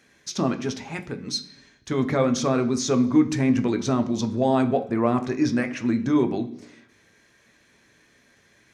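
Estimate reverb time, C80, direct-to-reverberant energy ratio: 0.65 s, 17.5 dB, 6.0 dB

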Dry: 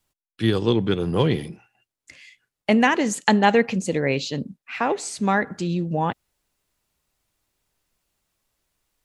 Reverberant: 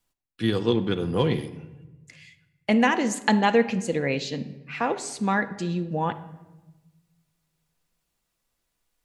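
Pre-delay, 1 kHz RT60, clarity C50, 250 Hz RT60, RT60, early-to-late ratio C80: 4 ms, 1.0 s, 14.0 dB, 1.6 s, 1.1 s, 16.5 dB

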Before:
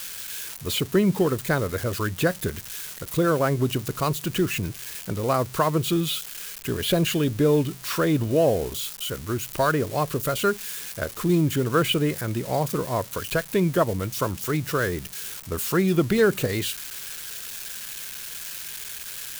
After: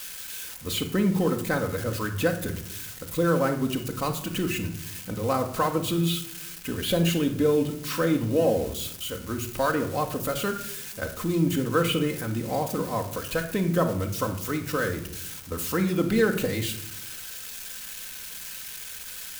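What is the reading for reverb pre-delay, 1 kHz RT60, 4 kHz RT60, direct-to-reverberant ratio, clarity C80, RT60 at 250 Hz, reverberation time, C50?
4 ms, 0.65 s, 0.40 s, 3.0 dB, 13.5 dB, 1.2 s, 0.70 s, 10.0 dB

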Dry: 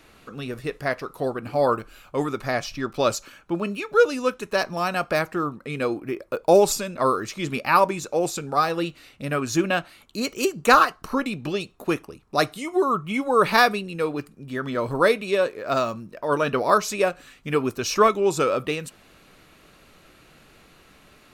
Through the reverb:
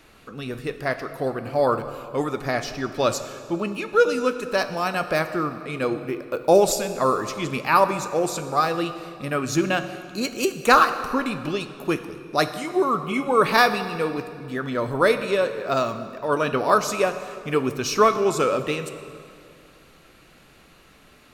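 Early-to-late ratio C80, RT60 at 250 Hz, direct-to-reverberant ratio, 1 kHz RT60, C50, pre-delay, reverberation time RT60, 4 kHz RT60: 11.5 dB, 2.5 s, 9.5 dB, 2.3 s, 11.0 dB, 10 ms, 2.3 s, 1.8 s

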